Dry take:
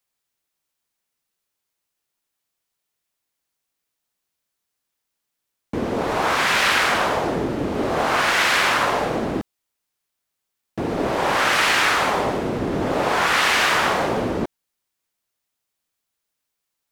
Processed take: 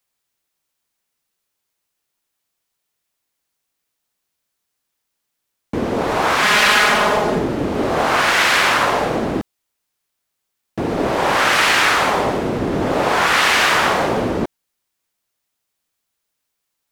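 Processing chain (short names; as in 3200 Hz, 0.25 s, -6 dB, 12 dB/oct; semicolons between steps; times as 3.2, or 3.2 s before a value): 6.42–7.39 comb 4.8 ms, depth 65%; gain +3.5 dB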